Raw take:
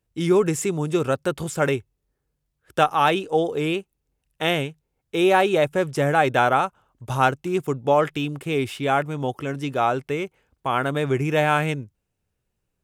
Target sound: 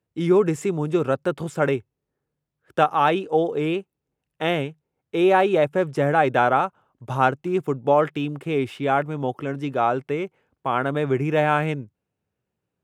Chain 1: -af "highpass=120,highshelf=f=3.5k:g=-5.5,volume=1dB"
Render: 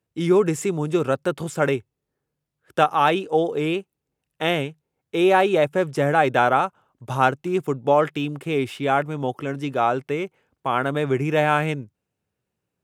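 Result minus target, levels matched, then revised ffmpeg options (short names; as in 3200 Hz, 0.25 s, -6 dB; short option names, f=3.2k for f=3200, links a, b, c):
8000 Hz band +6.0 dB
-af "highpass=120,highshelf=f=3.5k:g=-13,volume=1dB"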